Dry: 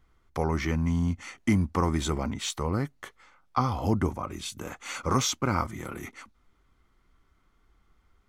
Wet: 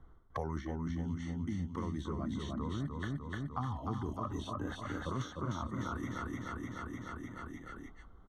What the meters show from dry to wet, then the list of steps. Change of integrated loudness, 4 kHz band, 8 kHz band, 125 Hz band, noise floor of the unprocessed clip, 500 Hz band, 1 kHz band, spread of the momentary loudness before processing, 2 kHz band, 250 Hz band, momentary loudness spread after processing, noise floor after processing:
-10.5 dB, -14.5 dB, -20.0 dB, -8.5 dB, -67 dBFS, -10.5 dB, -9.5 dB, 13 LU, -8.5 dB, -8.0 dB, 7 LU, -56 dBFS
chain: boxcar filter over 18 samples; gate -54 dBFS, range -16 dB; spectral noise reduction 12 dB; reverse; compression 10:1, threshold -41 dBFS, peak gain reduction 21 dB; reverse; feedback delay 301 ms, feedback 48%, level -4 dB; three bands compressed up and down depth 100%; trim +5.5 dB

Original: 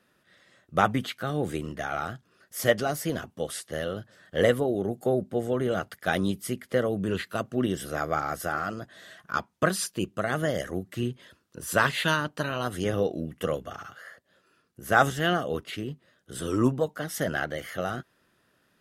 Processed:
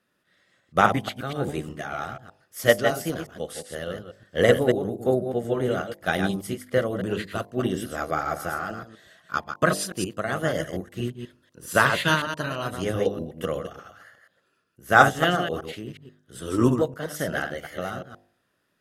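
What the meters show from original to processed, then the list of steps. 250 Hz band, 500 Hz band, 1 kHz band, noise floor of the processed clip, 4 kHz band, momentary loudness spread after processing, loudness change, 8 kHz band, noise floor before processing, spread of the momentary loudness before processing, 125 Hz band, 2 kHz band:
+2.0 dB, +3.0 dB, +4.0 dB, -72 dBFS, +2.5 dB, 15 LU, +3.0 dB, +0.5 dB, -69 dBFS, 14 LU, +2.0 dB, +4.0 dB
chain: chunks repeated in reverse 121 ms, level -5 dB; de-hum 50.14 Hz, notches 21; upward expansion 1.5:1, over -40 dBFS; trim +6 dB

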